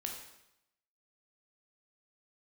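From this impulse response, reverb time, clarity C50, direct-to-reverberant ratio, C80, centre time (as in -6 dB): 0.85 s, 4.5 dB, 0.5 dB, 7.0 dB, 36 ms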